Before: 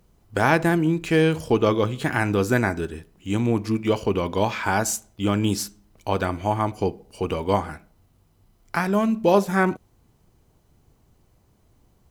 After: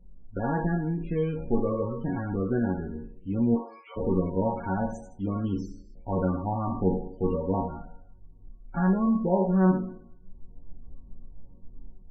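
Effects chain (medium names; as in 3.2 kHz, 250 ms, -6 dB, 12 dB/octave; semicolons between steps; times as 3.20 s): spectral sustain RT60 0.70 s; 3.54–3.96 s: high-pass 350 Hz -> 1.1 kHz 24 dB/octave; tilt EQ -4.5 dB/octave; level rider gain up to 5.5 dB; chord resonator F#3 major, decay 0.23 s; loudest bins only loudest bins 32; trim +4.5 dB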